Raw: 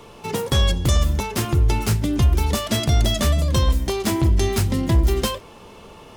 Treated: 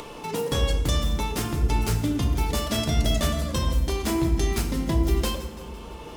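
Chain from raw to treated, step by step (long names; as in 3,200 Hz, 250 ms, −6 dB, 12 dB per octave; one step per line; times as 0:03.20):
parametric band 97 Hz −13 dB 0.34 octaves
echo with a time of its own for lows and highs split 440 Hz, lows 247 ms, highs 168 ms, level −16 dB
feedback delay network reverb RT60 1.2 s, low-frequency decay 1.4×, high-frequency decay 0.65×, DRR 4 dB
upward compression, threshold −25 dBFS
level −5.5 dB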